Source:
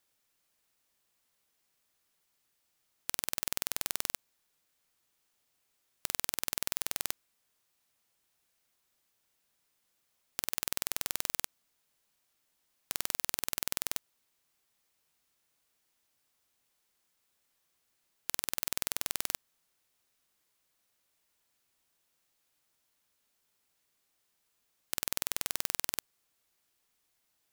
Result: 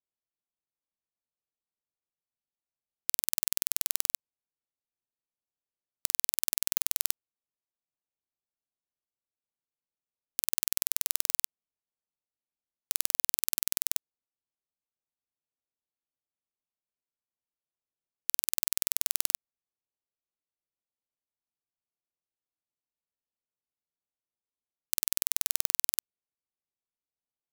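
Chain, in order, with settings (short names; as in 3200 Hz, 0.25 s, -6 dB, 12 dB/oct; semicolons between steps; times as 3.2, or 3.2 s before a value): Wiener smoothing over 25 samples; high shelf 5800 Hz +12 dB; sample leveller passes 5; gain -6.5 dB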